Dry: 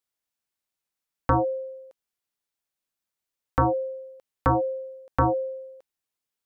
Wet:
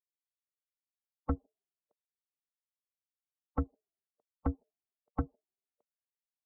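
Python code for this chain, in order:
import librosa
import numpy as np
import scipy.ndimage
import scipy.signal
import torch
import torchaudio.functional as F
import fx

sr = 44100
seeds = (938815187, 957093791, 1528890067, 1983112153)

y = fx.hpss_only(x, sr, part='percussive')
y = scipy.signal.savgol_filter(y, 65, 4, mode='constant')
y = fx.peak_eq(y, sr, hz=220.0, db=4.5, octaves=0.44)
y = fx.band_widen(y, sr, depth_pct=40)
y = y * 10.0 ** (-6.5 / 20.0)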